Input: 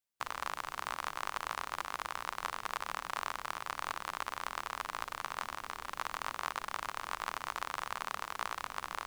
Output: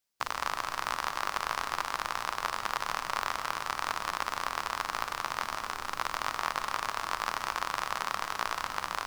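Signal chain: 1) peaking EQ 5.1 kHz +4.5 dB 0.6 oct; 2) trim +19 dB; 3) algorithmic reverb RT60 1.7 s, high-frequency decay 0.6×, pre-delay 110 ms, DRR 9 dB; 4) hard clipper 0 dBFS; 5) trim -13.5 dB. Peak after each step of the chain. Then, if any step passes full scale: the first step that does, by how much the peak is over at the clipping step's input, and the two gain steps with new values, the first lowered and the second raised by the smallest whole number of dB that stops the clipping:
-15.5 dBFS, +3.5 dBFS, +3.5 dBFS, 0.0 dBFS, -13.5 dBFS; step 2, 3.5 dB; step 2 +15 dB, step 5 -9.5 dB

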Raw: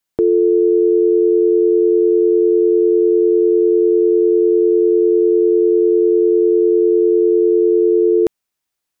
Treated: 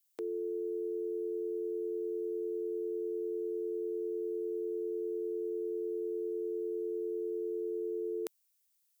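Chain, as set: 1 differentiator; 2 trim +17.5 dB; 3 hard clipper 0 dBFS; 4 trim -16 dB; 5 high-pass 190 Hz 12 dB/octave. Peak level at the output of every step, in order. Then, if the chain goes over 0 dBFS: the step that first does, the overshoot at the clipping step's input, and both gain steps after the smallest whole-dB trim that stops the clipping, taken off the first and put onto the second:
-13.5 dBFS, +4.0 dBFS, 0.0 dBFS, -16.0 dBFS, -15.5 dBFS; step 2, 4.0 dB; step 2 +13.5 dB, step 4 -12 dB

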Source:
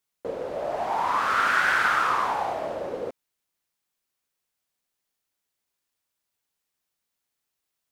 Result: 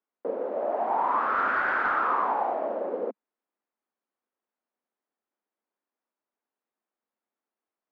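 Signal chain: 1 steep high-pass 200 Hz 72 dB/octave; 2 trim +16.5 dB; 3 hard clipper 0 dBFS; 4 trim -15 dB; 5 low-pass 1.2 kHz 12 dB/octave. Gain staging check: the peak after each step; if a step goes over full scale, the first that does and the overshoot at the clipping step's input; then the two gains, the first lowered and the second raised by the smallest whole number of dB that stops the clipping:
-8.5 dBFS, +8.0 dBFS, 0.0 dBFS, -15.0 dBFS, -15.5 dBFS; step 2, 8.0 dB; step 2 +8.5 dB, step 4 -7 dB

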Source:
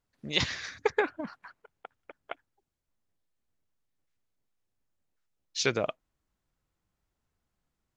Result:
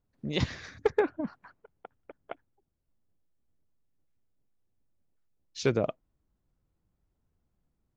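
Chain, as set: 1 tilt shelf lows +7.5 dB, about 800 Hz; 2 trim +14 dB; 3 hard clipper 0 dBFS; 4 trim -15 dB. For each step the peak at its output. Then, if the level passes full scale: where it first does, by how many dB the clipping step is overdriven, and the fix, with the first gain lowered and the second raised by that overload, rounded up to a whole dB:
-10.0 dBFS, +4.0 dBFS, 0.0 dBFS, -15.0 dBFS; step 2, 4.0 dB; step 2 +10 dB, step 4 -11 dB

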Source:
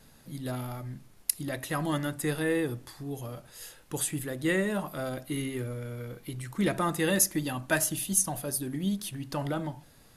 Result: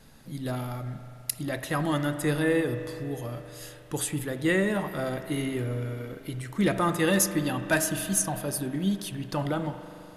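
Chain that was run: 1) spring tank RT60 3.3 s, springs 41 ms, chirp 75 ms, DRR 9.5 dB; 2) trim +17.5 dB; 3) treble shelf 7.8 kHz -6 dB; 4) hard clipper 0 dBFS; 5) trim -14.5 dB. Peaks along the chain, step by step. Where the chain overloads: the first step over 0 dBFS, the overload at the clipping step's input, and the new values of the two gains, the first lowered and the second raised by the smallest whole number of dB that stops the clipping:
-7.5 dBFS, +10.0 dBFS, +7.0 dBFS, 0.0 dBFS, -14.5 dBFS; step 2, 7.0 dB; step 2 +10.5 dB, step 5 -7.5 dB

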